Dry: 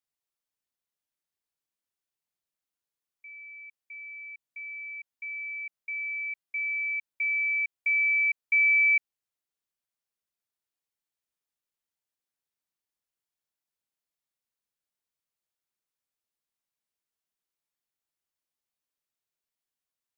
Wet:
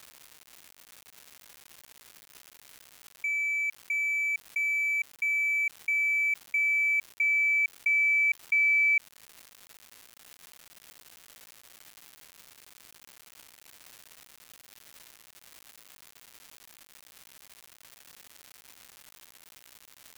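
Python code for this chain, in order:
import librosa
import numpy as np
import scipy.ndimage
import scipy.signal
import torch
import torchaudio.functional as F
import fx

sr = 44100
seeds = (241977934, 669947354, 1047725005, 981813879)

y = fx.law_mismatch(x, sr, coded='mu')
y = fx.peak_eq(y, sr, hz=2200.0, db=3.5, octaves=1.9)
y = fx.env_flatten(y, sr, amount_pct=70)
y = F.gain(torch.from_numpy(y), -6.0).numpy()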